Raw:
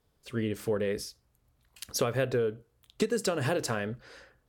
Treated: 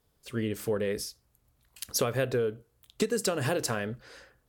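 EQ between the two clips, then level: treble shelf 7.2 kHz +7 dB; 0.0 dB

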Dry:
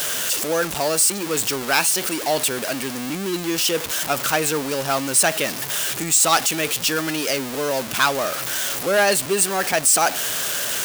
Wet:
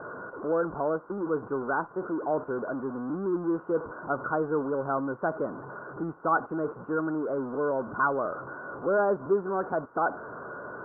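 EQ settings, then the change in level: rippled Chebyshev low-pass 1.5 kHz, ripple 6 dB; -2.0 dB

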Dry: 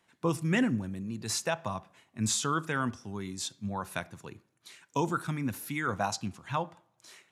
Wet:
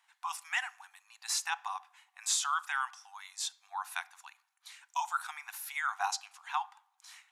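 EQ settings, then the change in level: brick-wall FIR high-pass 710 Hz; 0.0 dB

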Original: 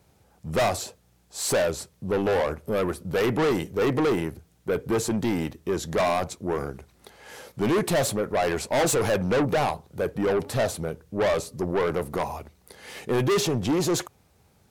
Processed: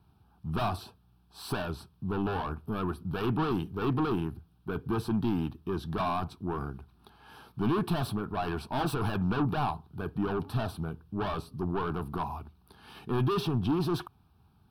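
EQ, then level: treble shelf 2.3 kHz -10.5 dB; static phaser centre 2 kHz, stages 6; 0.0 dB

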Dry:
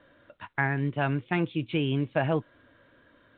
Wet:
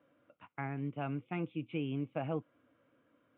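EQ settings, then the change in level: distance through air 160 m; cabinet simulation 180–2600 Hz, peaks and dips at 210 Hz -4 dB, 380 Hz -8 dB, 610 Hz -6 dB, 940 Hz -8 dB, 1.6 kHz -8 dB; peaking EQ 1.8 kHz -10 dB 0.33 oct; -4.5 dB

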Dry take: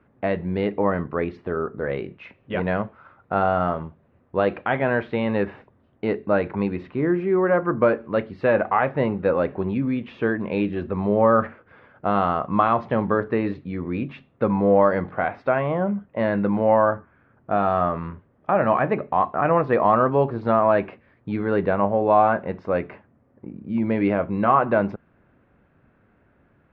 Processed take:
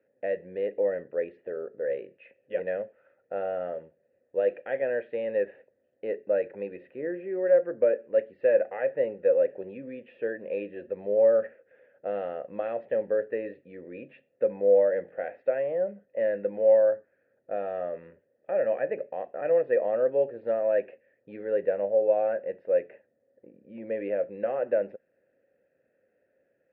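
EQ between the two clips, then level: vowel filter e; treble shelf 3 kHz -9 dB; +2.5 dB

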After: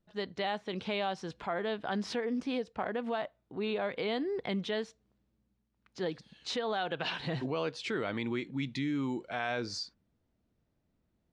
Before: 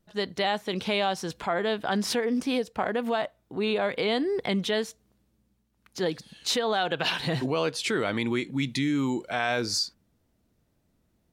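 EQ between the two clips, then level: distance through air 110 m; -6.5 dB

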